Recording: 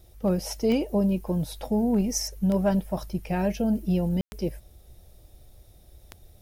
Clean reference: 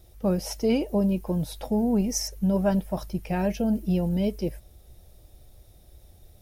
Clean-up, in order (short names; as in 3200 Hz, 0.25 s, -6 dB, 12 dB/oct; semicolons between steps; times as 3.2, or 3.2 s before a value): clip repair -15 dBFS; de-click; room tone fill 4.21–4.32